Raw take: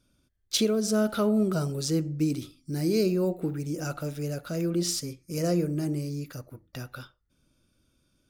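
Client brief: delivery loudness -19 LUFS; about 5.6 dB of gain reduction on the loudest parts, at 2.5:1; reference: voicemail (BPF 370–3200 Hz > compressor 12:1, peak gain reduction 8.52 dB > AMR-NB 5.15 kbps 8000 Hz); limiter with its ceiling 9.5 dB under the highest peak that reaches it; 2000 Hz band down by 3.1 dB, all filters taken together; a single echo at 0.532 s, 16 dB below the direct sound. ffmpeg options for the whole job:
-af "equalizer=f=2k:t=o:g=-4,acompressor=threshold=-29dB:ratio=2.5,alimiter=level_in=2dB:limit=-24dB:level=0:latency=1,volume=-2dB,highpass=370,lowpass=3.2k,aecho=1:1:532:0.158,acompressor=threshold=-40dB:ratio=12,volume=27.5dB" -ar 8000 -c:a libopencore_amrnb -b:a 5150

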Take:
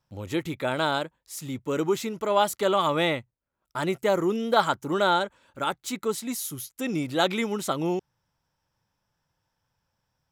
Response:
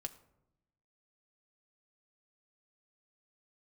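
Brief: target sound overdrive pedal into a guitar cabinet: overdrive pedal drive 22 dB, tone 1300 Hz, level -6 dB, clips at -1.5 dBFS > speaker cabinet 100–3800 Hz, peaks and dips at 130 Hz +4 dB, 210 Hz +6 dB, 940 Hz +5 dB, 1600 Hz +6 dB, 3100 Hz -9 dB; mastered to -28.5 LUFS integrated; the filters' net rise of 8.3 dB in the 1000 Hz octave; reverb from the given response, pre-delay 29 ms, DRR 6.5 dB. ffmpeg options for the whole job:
-filter_complex "[0:a]equalizer=f=1k:t=o:g=6.5,asplit=2[a][b];[1:a]atrim=start_sample=2205,adelay=29[c];[b][c]afir=irnorm=-1:irlink=0,volume=-3.5dB[d];[a][d]amix=inputs=2:normalize=0,asplit=2[e][f];[f]highpass=f=720:p=1,volume=22dB,asoftclip=type=tanh:threshold=-1.5dB[g];[e][g]amix=inputs=2:normalize=0,lowpass=f=1.3k:p=1,volume=-6dB,highpass=100,equalizer=f=130:t=q:w=4:g=4,equalizer=f=210:t=q:w=4:g=6,equalizer=f=940:t=q:w=4:g=5,equalizer=f=1.6k:t=q:w=4:g=6,equalizer=f=3.1k:t=q:w=4:g=-9,lowpass=f=3.8k:w=0.5412,lowpass=f=3.8k:w=1.3066,volume=-14.5dB"

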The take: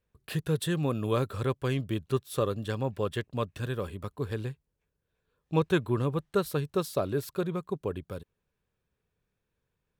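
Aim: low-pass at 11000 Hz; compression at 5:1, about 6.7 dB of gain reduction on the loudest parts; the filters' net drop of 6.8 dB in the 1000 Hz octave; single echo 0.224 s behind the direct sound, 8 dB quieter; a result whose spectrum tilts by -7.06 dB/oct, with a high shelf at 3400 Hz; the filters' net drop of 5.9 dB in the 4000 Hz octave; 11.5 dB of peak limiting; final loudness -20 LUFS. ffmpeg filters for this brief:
-af "lowpass=11k,equalizer=f=1k:t=o:g=-8,highshelf=f=3.4k:g=-3.5,equalizer=f=4k:t=o:g=-4.5,acompressor=threshold=-29dB:ratio=5,alimiter=level_in=8.5dB:limit=-24dB:level=0:latency=1,volume=-8.5dB,aecho=1:1:224:0.398,volume=21.5dB"

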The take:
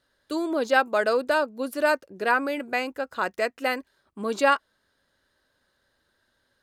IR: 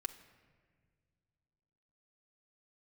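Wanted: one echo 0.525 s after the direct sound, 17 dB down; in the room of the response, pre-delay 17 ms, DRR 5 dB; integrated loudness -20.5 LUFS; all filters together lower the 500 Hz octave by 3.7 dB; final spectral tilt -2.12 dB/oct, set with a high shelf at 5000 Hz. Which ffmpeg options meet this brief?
-filter_complex "[0:a]equalizer=f=500:t=o:g=-4.5,highshelf=f=5k:g=5.5,aecho=1:1:525:0.141,asplit=2[a][b];[1:a]atrim=start_sample=2205,adelay=17[c];[b][c]afir=irnorm=-1:irlink=0,volume=-4dB[d];[a][d]amix=inputs=2:normalize=0,volume=5dB"

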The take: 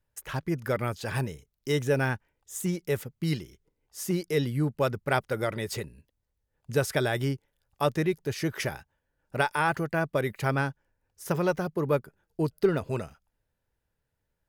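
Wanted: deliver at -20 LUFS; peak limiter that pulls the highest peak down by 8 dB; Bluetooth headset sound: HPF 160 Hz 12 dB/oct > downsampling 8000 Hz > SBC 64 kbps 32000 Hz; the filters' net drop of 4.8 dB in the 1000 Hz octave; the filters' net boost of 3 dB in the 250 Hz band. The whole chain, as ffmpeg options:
-af "equalizer=f=250:t=o:g=6.5,equalizer=f=1k:t=o:g=-7,alimiter=limit=-18dB:level=0:latency=1,highpass=160,aresample=8000,aresample=44100,volume=11.5dB" -ar 32000 -c:a sbc -b:a 64k

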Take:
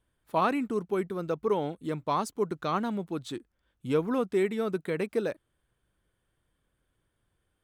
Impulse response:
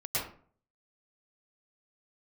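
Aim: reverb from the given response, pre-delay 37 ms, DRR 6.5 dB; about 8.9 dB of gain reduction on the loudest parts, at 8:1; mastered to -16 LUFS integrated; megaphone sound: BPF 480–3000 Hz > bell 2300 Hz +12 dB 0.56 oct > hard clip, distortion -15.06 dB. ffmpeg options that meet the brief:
-filter_complex "[0:a]acompressor=threshold=-31dB:ratio=8,asplit=2[a][b];[1:a]atrim=start_sample=2205,adelay=37[c];[b][c]afir=irnorm=-1:irlink=0,volume=-13dB[d];[a][d]amix=inputs=2:normalize=0,highpass=480,lowpass=3k,equalizer=f=2.3k:t=o:w=0.56:g=12,asoftclip=type=hard:threshold=-30.5dB,volume=23.5dB"

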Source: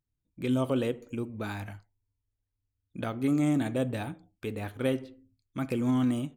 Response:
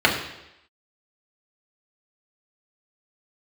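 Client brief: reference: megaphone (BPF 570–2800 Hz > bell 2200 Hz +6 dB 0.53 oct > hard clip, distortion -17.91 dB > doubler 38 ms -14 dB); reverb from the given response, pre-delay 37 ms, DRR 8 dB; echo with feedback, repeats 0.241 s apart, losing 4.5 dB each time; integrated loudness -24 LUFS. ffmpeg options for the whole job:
-filter_complex "[0:a]aecho=1:1:241|482|723|964|1205|1446|1687|1928|2169:0.596|0.357|0.214|0.129|0.0772|0.0463|0.0278|0.0167|0.01,asplit=2[a][b];[1:a]atrim=start_sample=2205,adelay=37[c];[b][c]afir=irnorm=-1:irlink=0,volume=-29dB[d];[a][d]amix=inputs=2:normalize=0,highpass=570,lowpass=2.8k,equalizer=f=2.2k:t=o:w=0.53:g=6,asoftclip=type=hard:threshold=-28dB,asplit=2[e][f];[f]adelay=38,volume=-14dB[g];[e][g]amix=inputs=2:normalize=0,volume=13.5dB"

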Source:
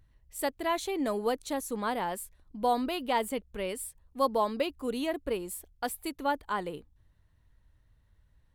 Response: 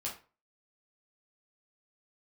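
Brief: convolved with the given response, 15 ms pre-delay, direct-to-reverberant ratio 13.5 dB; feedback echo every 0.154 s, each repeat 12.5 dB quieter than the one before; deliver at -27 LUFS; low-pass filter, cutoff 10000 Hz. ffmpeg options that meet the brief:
-filter_complex "[0:a]lowpass=10k,aecho=1:1:154|308|462:0.237|0.0569|0.0137,asplit=2[a][b];[1:a]atrim=start_sample=2205,adelay=15[c];[b][c]afir=irnorm=-1:irlink=0,volume=-14.5dB[d];[a][d]amix=inputs=2:normalize=0,volume=5dB"

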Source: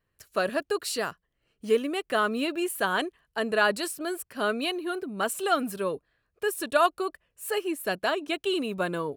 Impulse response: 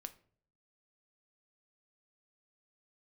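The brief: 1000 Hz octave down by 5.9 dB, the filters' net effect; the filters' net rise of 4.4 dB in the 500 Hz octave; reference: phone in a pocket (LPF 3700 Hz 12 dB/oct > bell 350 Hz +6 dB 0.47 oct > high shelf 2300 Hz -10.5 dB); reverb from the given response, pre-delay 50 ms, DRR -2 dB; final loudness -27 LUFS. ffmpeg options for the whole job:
-filter_complex "[0:a]equalizer=f=500:t=o:g=5.5,equalizer=f=1k:t=o:g=-9,asplit=2[a][b];[1:a]atrim=start_sample=2205,adelay=50[c];[b][c]afir=irnorm=-1:irlink=0,volume=6.5dB[d];[a][d]amix=inputs=2:normalize=0,lowpass=3.7k,equalizer=f=350:t=o:w=0.47:g=6,highshelf=f=2.3k:g=-10.5,volume=-4.5dB"

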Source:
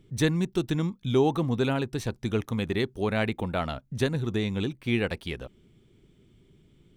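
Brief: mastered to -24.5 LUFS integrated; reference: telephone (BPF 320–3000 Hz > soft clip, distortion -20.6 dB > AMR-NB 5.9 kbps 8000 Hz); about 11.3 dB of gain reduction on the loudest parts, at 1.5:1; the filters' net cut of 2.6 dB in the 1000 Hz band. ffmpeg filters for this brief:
-af "equalizer=f=1k:t=o:g=-3.5,acompressor=threshold=-51dB:ratio=1.5,highpass=320,lowpass=3k,asoftclip=threshold=-28.5dB,volume=20dB" -ar 8000 -c:a libopencore_amrnb -b:a 5900

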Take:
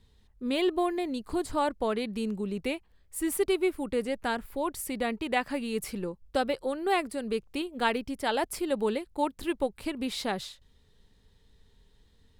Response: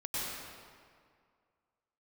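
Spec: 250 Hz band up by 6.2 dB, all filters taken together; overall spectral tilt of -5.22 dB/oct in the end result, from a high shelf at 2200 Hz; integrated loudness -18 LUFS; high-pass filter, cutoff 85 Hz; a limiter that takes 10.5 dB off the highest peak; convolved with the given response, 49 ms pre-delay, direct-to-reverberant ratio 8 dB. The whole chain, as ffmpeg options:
-filter_complex "[0:a]highpass=85,equalizer=f=250:t=o:g=8,highshelf=f=2.2k:g=-4.5,alimiter=limit=-23.5dB:level=0:latency=1,asplit=2[a][b];[1:a]atrim=start_sample=2205,adelay=49[c];[b][c]afir=irnorm=-1:irlink=0,volume=-13dB[d];[a][d]amix=inputs=2:normalize=0,volume=13.5dB"

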